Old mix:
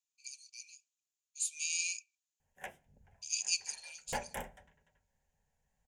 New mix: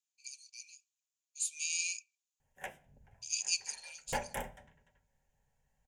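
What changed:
background: send +9.5 dB; master: add peaking EQ 120 Hz +8 dB 0.25 oct

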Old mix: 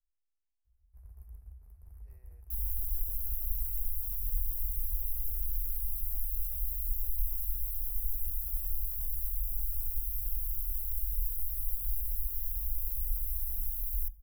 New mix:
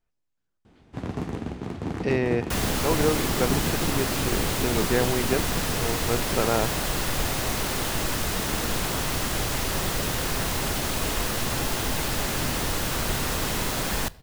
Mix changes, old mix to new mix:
speech +5.0 dB; second sound: add band-stop 2.3 kHz, Q 29; master: remove inverse Chebyshev band-stop 110–7600 Hz, stop band 40 dB

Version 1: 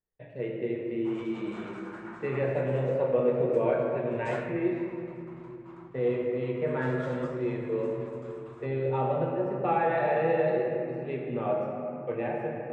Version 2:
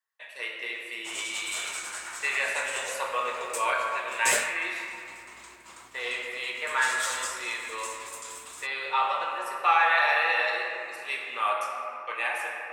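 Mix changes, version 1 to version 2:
speech: add resonant high-pass 1.1 kHz, resonance Q 3.9; master: remove low-pass 1.1 kHz 12 dB/octave

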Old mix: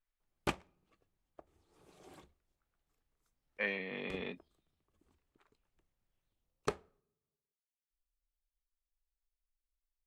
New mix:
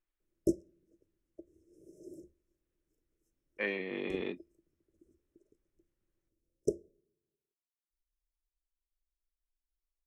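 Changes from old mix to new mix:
background: add brick-wall FIR band-stop 650–5100 Hz; master: add peaking EQ 340 Hz +15 dB 0.42 oct

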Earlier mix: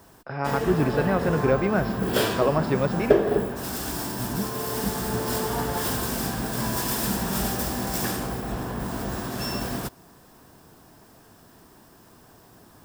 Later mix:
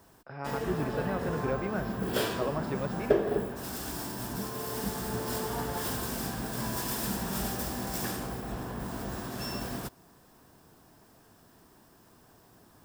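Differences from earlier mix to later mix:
speech -10.5 dB; background -6.5 dB

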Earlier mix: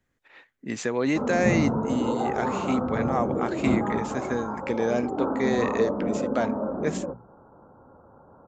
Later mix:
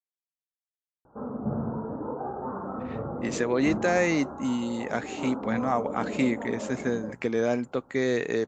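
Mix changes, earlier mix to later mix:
speech: entry +2.55 s; background -6.5 dB

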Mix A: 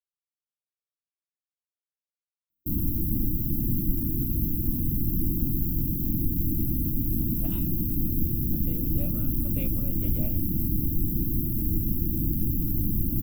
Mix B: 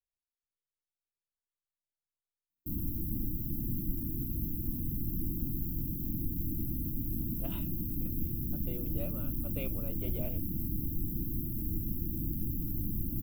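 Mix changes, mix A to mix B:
speech: remove high-pass 260 Hz 6 dB/octave; background -8.5 dB

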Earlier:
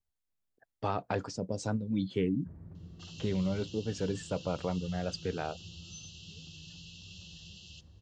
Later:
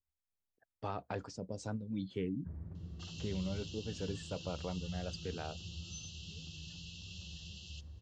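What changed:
speech -7.5 dB; master: add peaking EQ 72 Hz +9.5 dB 0.31 oct

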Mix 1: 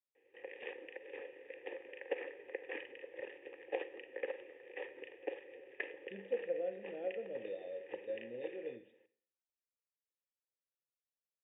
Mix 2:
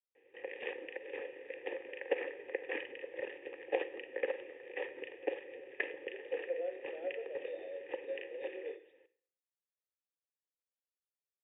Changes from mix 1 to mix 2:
speech: add steep high-pass 340 Hz 96 dB/octave; background +5.0 dB

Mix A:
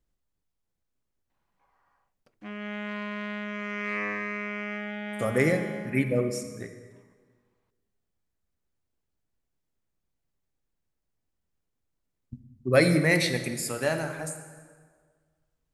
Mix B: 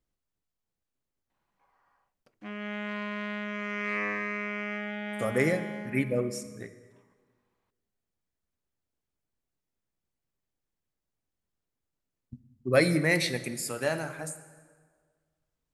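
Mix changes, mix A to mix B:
speech: send -6.0 dB; master: add bass shelf 89 Hz -5.5 dB

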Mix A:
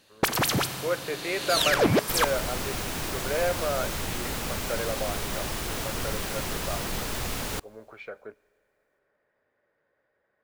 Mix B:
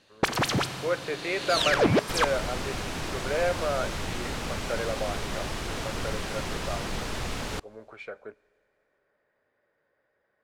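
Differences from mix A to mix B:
speech: remove distance through air 120 m; master: add distance through air 57 m

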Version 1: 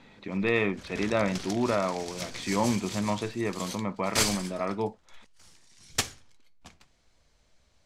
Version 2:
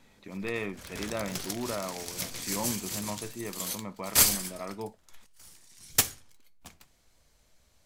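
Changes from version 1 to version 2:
speech -8.0 dB; master: remove low-pass 6.3 kHz 12 dB/octave

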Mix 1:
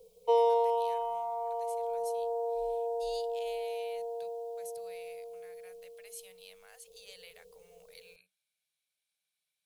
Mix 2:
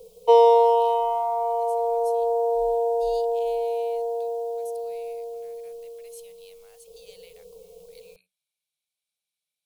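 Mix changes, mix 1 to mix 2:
speech: add peaking EQ 1.7 kHz -9 dB 0.63 oct; background +10.5 dB

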